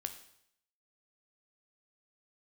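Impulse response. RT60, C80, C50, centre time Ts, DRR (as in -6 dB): 0.70 s, 13.5 dB, 10.5 dB, 11 ms, 7.0 dB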